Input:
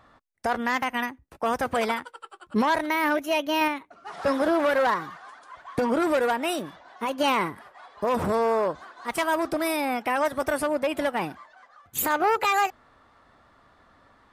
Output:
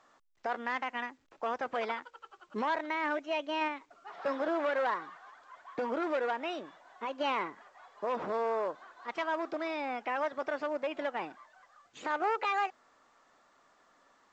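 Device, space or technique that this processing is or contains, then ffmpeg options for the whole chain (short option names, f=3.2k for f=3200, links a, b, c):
telephone: -af "highpass=310,lowpass=3.6k,volume=-8dB" -ar 16000 -c:a pcm_alaw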